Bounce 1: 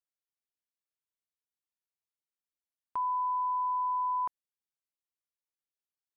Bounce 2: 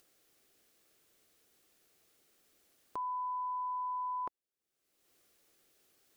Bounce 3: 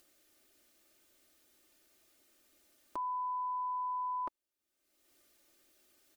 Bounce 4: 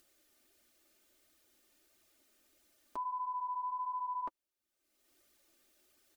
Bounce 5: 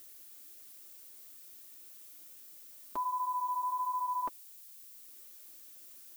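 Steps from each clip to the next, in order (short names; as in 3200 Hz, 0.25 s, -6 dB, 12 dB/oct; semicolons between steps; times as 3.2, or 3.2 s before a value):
notch 950 Hz, Q 5.3; upward compressor, threshold -49 dBFS; bell 380 Hz +9.5 dB 1.3 oct; gain -1.5 dB
comb 3.3 ms, depth 67%
flange 1.5 Hz, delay 0.5 ms, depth 4.6 ms, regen -32%; gain +2 dB
added noise violet -57 dBFS; gain +4 dB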